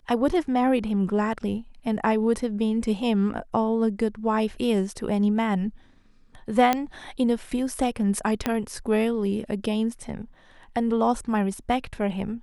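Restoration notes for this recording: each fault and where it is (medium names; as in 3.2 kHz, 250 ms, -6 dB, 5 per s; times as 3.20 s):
6.73 s: pop -8 dBFS
8.46 s: pop -9 dBFS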